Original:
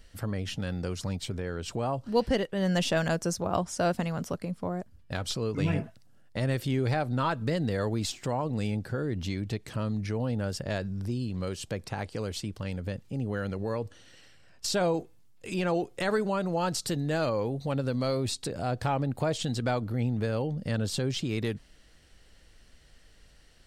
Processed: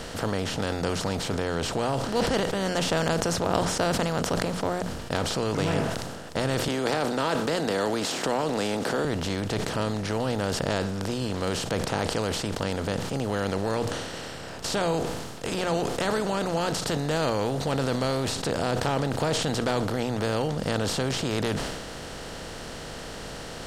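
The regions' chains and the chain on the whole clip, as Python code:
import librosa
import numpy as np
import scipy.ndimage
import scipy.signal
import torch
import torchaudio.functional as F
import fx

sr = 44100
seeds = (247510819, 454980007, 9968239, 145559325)

y = fx.chain(x, sr, fx.highpass(hz=240.0, slope=24),
    fx.env_flatten(amount_pct=50), at=(6.68, 9.05))
y = fx.bin_compress(y, sr, power=0.4)
y = fx.hum_notches(y, sr, base_hz=60, count=3)
y = fx.sustainer(y, sr, db_per_s=36.0)
y = F.gain(torch.from_numpy(y), -4.0).numpy()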